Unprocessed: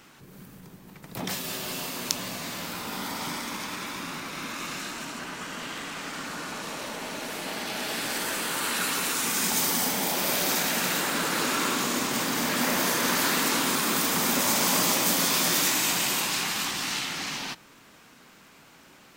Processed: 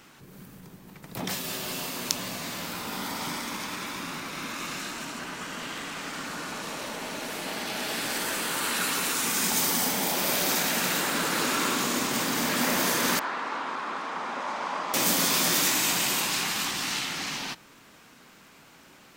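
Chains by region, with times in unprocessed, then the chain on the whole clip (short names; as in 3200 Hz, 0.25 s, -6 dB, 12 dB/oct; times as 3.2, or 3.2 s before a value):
13.19–14.94 band-pass 1000 Hz, Q 1.3 + air absorption 73 m
whole clip: dry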